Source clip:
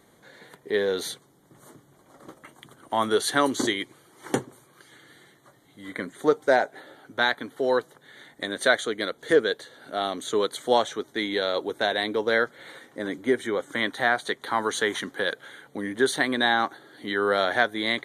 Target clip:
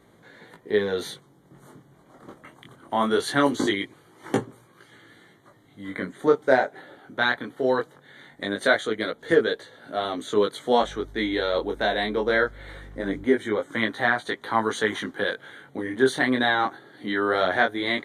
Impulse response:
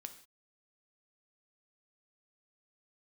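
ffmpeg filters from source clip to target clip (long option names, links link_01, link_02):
-filter_complex "[0:a]bass=frequency=250:gain=4,treble=frequency=4000:gain=-7,asettb=1/sr,asplit=3[link_01][link_02][link_03];[link_01]atrim=end=10.814[link_04];[link_02]atrim=start=10.81:end=13.24,asetpts=PTS-STARTPTS,afade=type=in:duration=0.004:curve=qsin,afade=type=out:start_time=2.426:duration=0.004:curve=qsin,aeval=exprs='val(0)+0.00562*(sin(2*PI*50*n/s)+sin(2*PI*2*50*n/s)/2+sin(2*PI*3*50*n/s)/3+sin(2*PI*4*50*n/s)/4+sin(2*PI*5*50*n/s)/5)':channel_layout=same[link_05];[link_03]atrim=start=13.236[link_06];[link_04][link_05]acrossfade=duration=0.004:curve1=hsin:curve2=qsin[link_07];[link_07][link_06]acrossfade=duration=0.004:curve1=qsin:curve2=hsin,flanger=delay=17.5:depth=6.4:speed=0.21,volume=4dB"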